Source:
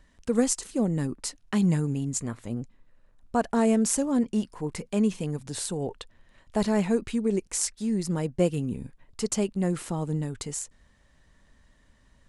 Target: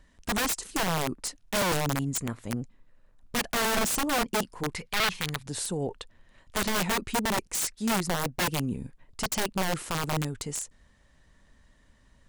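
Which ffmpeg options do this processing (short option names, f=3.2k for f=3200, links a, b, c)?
-filter_complex "[0:a]aeval=exprs='(mod(11.9*val(0)+1,2)-1)/11.9':c=same,asettb=1/sr,asplit=3[a][b][c];[a]atrim=end=4.754[d];[b]atrim=start=4.75:end=5.46,asetpts=PTS-STARTPTS,afade=t=in:d=0.004:c=qsin,afade=t=out:st=0.706:d=0.004:c=qsin,equalizer=f=250:t=o:w=1:g=-9,equalizer=f=500:t=o:w=1:g=-5,equalizer=f=2k:t=o:w=1:g=6,equalizer=f=4k:t=o:w=1:g=6,equalizer=f=8k:t=o:w=1:g=-4[e];[c]atrim=start=5.456[f];[d][e]acrossfade=d=0.004:c1=hsin:c2=qsin[g];[g][f]acrossfade=d=0.004:c1=qsin:c2=hsin"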